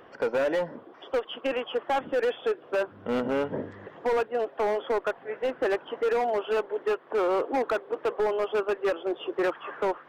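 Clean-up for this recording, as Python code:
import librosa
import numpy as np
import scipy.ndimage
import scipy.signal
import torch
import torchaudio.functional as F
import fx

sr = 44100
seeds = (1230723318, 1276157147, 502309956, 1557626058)

y = fx.fix_declip(x, sr, threshold_db=-21.5)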